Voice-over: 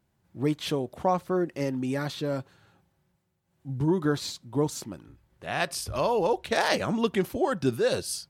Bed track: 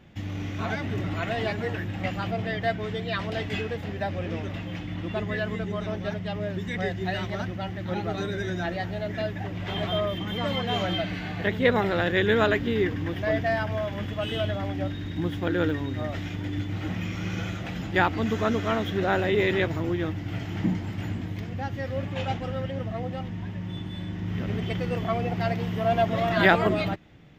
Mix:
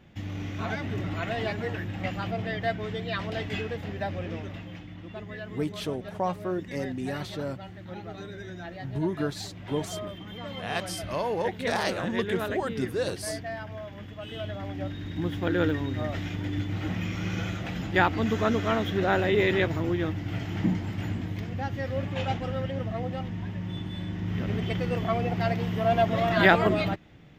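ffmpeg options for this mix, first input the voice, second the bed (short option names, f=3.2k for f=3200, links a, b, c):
-filter_complex "[0:a]adelay=5150,volume=-4dB[a];[1:a]volume=8dB,afade=t=out:st=4.1:d=0.85:silence=0.398107,afade=t=in:st=14.22:d=1.34:silence=0.316228[b];[a][b]amix=inputs=2:normalize=0"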